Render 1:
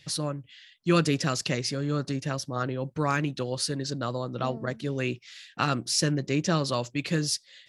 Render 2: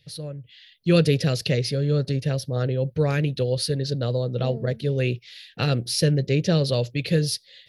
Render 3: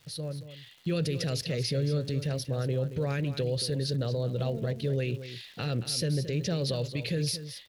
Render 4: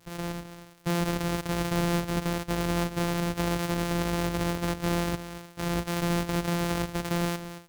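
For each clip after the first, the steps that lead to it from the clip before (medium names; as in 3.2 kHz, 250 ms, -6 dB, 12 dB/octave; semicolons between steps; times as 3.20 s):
FFT filter 120 Hz 0 dB, 310 Hz -12 dB, 470 Hz 0 dB, 1.1 kHz -22 dB, 1.7 kHz -11 dB, 4.2 kHz -5 dB, 7.5 kHz -20 dB, 11 kHz -3 dB; level rider gain up to 10.5 dB
peak limiter -19.5 dBFS, peak gain reduction 11.5 dB; crackle 280 per s -44 dBFS; delay 225 ms -12 dB; trim -2 dB
sorted samples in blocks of 256 samples; trim +1.5 dB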